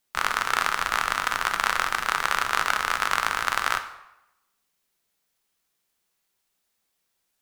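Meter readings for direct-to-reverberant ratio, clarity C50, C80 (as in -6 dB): 7.0 dB, 11.0 dB, 13.5 dB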